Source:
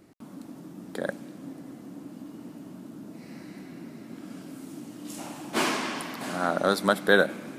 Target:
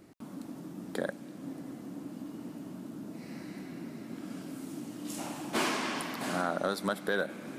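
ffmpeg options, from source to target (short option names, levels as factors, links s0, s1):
-af "asoftclip=type=tanh:threshold=0.501,alimiter=limit=0.112:level=0:latency=1:release=447"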